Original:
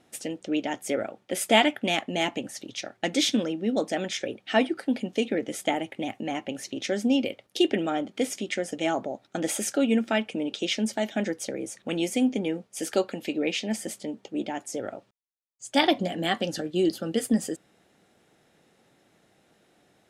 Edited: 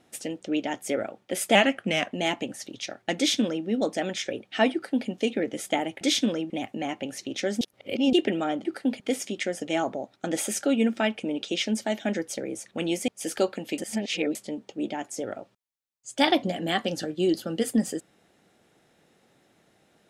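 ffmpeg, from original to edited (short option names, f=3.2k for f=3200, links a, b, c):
-filter_complex "[0:a]asplit=12[a][b][c][d][e][f][g][h][i][j][k][l];[a]atrim=end=1.554[m];[b]atrim=start=1.55:end=2.06,asetpts=PTS-STARTPTS,asetrate=40131,aresample=44100,atrim=end_sample=24715,asetpts=PTS-STARTPTS[n];[c]atrim=start=2.056:end=5.962[o];[d]atrim=start=3.118:end=3.612[p];[e]atrim=start=5.958:end=7.072[q];[f]atrim=start=7.068:end=7.592,asetpts=PTS-STARTPTS,areverse[r];[g]atrim=start=7.588:end=8.112[s];[h]atrim=start=4.678:end=5.032[t];[i]atrim=start=8.108:end=12.192[u];[j]atrim=start=12.638:end=13.342[v];[k]atrim=start=13.338:end=13.912,asetpts=PTS-STARTPTS,areverse[w];[l]atrim=start=13.908[x];[m][n]acrossfade=d=0.004:c1=hsin:c2=hsin[y];[y][o]acrossfade=d=0.004:c1=hsin:c2=hsin[z];[z][p]acrossfade=d=0.004:c1=hsin:c2=hsin[aa];[aa][q]acrossfade=d=0.004:c1=hsin:c2=hsin[ab];[ab][r]acrossfade=d=0.004:c1=hsin:c2=hsin[ac];[ac][s]acrossfade=d=0.004:c1=hsin:c2=hsin[ad];[ad][t]acrossfade=d=0.004:c1=hsin:c2=hsin[ae];[ae][u]acrossfade=d=0.004:c1=hsin:c2=hsin[af];[af][v]acrossfade=d=0.004:c1=hsin:c2=hsin[ag];[ag][w]acrossfade=d=0.004:c1=hsin:c2=hsin[ah];[ah][x]acrossfade=d=0.004:c1=hsin:c2=hsin"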